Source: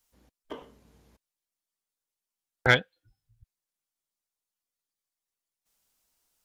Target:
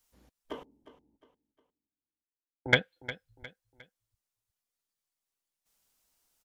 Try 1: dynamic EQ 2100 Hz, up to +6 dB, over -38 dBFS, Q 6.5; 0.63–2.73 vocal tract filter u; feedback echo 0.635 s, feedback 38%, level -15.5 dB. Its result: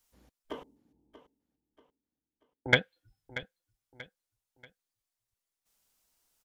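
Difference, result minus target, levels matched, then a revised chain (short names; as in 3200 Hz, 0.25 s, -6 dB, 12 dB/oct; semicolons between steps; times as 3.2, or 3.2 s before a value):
echo 0.278 s late
dynamic EQ 2100 Hz, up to +6 dB, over -38 dBFS, Q 6.5; 0.63–2.73 vocal tract filter u; feedback echo 0.357 s, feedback 38%, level -15.5 dB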